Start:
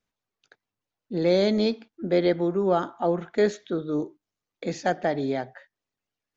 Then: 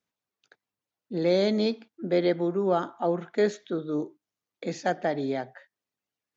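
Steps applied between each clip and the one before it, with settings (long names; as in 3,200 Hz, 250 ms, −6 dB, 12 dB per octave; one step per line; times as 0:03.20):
high-pass filter 110 Hz
level −2 dB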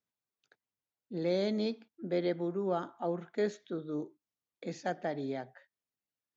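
low-shelf EQ 180 Hz +4 dB
level −8.5 dB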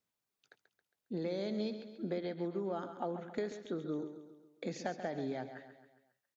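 downward compressor, threshold −38 dBFS, peak gain reduction 11.5 dB
repeating echo 136 ms, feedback 49%, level −10.5 dB
level +3.5 dB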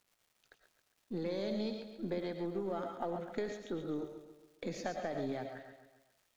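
gain on one half-wave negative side −3 dB
surface crackle 380 per second −61 dBFS
convolution reverb, pre-delay 75 ms, DRR 6.5 dB
level +1 dB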